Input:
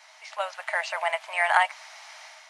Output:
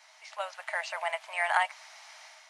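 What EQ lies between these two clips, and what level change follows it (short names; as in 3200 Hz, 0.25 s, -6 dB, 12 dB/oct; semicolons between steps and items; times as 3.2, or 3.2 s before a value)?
tone controls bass -4 dB, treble +2 dB; -5.5 dB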